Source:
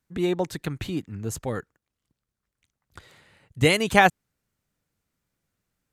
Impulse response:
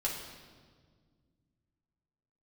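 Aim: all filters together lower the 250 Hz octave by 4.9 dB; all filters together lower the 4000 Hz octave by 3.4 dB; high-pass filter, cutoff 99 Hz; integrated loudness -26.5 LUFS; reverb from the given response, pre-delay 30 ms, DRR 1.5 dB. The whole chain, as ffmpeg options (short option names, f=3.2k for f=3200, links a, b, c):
-filter_complex "[0:a]highpass=99,equalizer=f=250:t=o:g=-7.5,equalizer=f=4k:t=o:g=-5,asplit=2[a][b];[1:a]atrim=start_sample=2205,adelay=30[c];[b][c]afir=irnorm=-1:irlink=0,volume=-6dB[d];[a][d]amix=inputs=2:normalize=0,volume=-2dB"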